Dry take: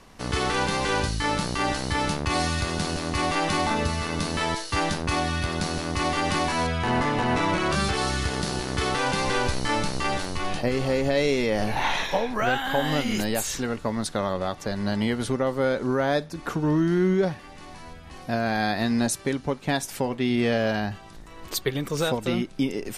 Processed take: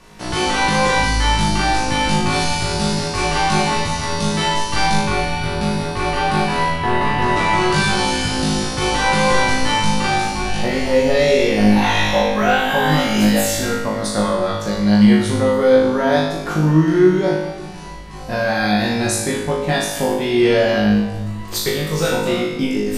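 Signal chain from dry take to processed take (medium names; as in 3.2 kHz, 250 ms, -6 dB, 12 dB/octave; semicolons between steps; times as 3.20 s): 5.08–7.22 s: peaking EQ 6.7 kHz -10.5 dB 1.1 oct; flutter echo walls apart 3.3 m, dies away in 0.81 s; simulated room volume 1300 m³, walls mixed, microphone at 0.92 m; trim +2 dB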